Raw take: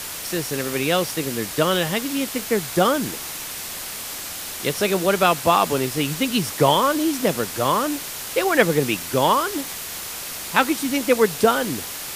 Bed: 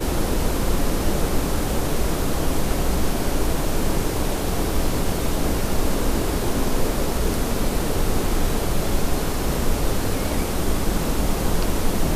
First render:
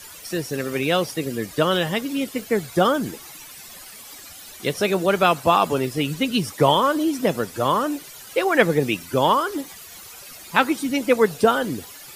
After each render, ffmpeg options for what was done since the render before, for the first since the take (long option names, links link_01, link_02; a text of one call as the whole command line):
ffmpeg -i in.wav -af "afftdn=noise_reduction=14:noise_floor=-32" out.wav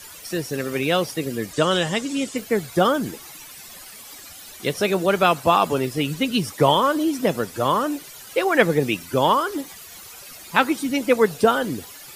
ffmpeg -i in.wav -filter_complex "[0:a]asettb=1/sr,asplit=3[link_01][link_02][link_03];[link_01]atrim=end=1.534[link_04];[link_02]atrim=start=1.53:end=2.37,asetpts=PTS-STARTPTS,afade=type=in:duration=0.004:curve=qsin,afade=type=out:start_time=0.836:duration=0.004:curve=qsin,lowpass=frequency=7600:width_type=q:width=2.6[link_05];[link_03]atrim=start=2.366[link_06];[link_04][link_05]acrossfade=duration=0.004:curve1=hsin:curve2=qsin[link_07];[link_07][link_06]acrossfade=duration=0.004:curve1=qsin:curve2=hsin" out.wav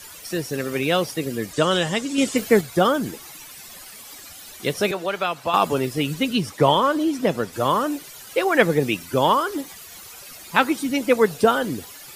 ffmpeg -i in.wav -filter_complex "[0:a]asettb=1/sr,asplit=3[link_01][link_02][link_03];[link_01]atrim=end=4.914[link_04];[link_02]atrim=start=4.91:end=5.54,asetpts=PTS-STARTPTS,afade=type=in:duration=0.004:curve=qsin,afade=type=out:start_time=0.626:duration=0.004:curve=qsin,acrossover=split=500|2500|5000[link_05][link_06][link_07][link_08];[link_05]acompressor=threshold=-38dB:ratio=3[link_09];[link_06]acompressor=threshold=-24dB:ratio=3[link_10];[link_07]acompressor=threshold=-32dB:ratio=3[link_11];[link_08]acompressor=threshold=-53dB:ratio=3[link_12];[link_09][link_10][link_11][link_12]amix=inputs=4:normalize=0[link_13];[link_03]atrim=start=5.536[link_14];[link_04][link_13]acrossfade=duration=0.004:curve1=hsin:curve2=qsin[link_15];[link_15][link_14]acrossfade=duration=0.004:curve1=qsin:curve2=hsin,asettb=1/sr,asplit=3[link_16][link_17][link_18];[link_16]atrim=end=6.334[link_19];[link_17]atrim=start=6.33:end=7.53,asetpts=PTS-STARTPTS,afade=type=in:duration=0.004:curve=qsin,afade=type=out:start_time=1.196:duration=0.004:curve=qsin,highshelf=frequency=8200:gain=-8[link_20];[link_18]atrim=start=7.526[link_21];[link_19][link_20]acrossfade=duration=0.004:curve1=hsin:curve2=qsin[link_22];[link_22][link_21]acrossfade=duration=0.004:curve1=qsin:curve2=hsin,asplit=3[link_23][link_24][link_25];[link_23]atrim=end=2.182[link_26];[link_24]atrim=start=2.178:end=2.612,asetpts=PTS-STARTPTS,volume=5.5dB[link_27];[link_25]atrim=start=2.608[link_28];[link_26][link_27]acrossfade=duration=0.004:curve1=hsin:curve2=hsin[link_29];[link_29][link_28]acrossfade=duration=0.004:curve1=hsin:curve2=hsin" out.wav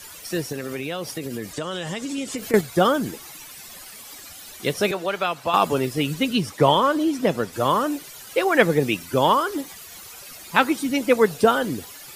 ffmpeg -i in.wav -filter_complex "[0:a]asettb=1/sr,asplit=3[link_01][link_02][link_03];[link_01]atrim=end=0.524[link_04];[link_02]atrim=start=0.52:end=2.54,asetpts=PTS-STARTPTS,afade=type=in:duration=0.004:curve=qsin,afade=type=out:start_time=2.016:duration=0.004:curve=qsin,acompressor=threshold=-25dB:ratio=6:attack=3.2:release=140:knee=1:detection=peak[link_05];[link_03]atrim=start=2.536[link_06];[link_04][link_05]acrossfade=duration=0.004:curve1=hsin:curve2=qsin[link_07];[link_07][link_06]acrossfade=duration=0.004:curve1=qsin:curve2=hsin" out.wav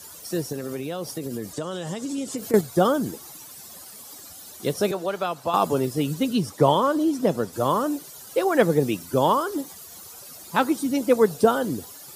ffmpeg -i in.wav -af "highpass=71,equalizer=frequency=2300:width=1:gain=-11" out.wav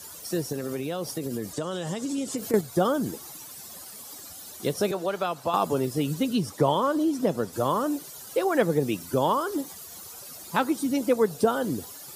ffmpeg -i in.wav -af "acompressor=threshold=-25dB:ratio=1.5" out.wav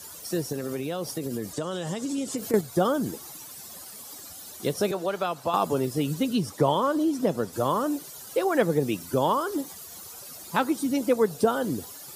ffmpeg -i in.wav -af anull out.wav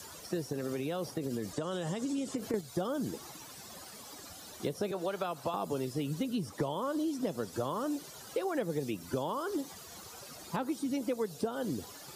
ffmpeg -i in.wav -filter_complex "[0:a]acrossover=split=790[link_01][link_02];[link_02]alimiter=level_in=0.5dB:limit=-24dB:level=0:latency=1:release=210,volume=-0.5dB[link_03];[link_01][link_03]amix=inputs=2:normalize=0,acrossover=split=2600|7100[link_04][link_05][link_06];[link_04]acompressor=threshold=-32dB:ratio=4[link_07];[link_05]acompressor=threshold=-51dB:ratio=4[link_08];[link_06]acompressor=threshold=-57dB:ratio=4[link_09];[link_07][link_08][link_09]amix=inputs=3:normalize=0" out.wav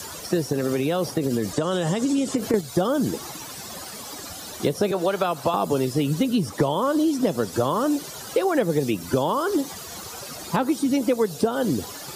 ffmpeg -i in.wav -af "volume=12dB" out.wav